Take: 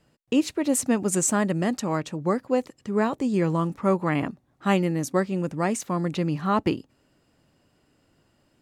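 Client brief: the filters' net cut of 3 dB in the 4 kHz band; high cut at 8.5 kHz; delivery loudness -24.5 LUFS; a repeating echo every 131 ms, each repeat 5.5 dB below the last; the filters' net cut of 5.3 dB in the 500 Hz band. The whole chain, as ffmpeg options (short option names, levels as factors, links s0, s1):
-af "lowpass=8500,equalizer=f=500:t=o:g=-7,equalizer=f=4000:t=o:g=-4,aecho=1:1:131|262|393|524|655|786|917:0.531|0.281|0.149|0.079|0.0419|0.0222|0.0118,volume=1.19"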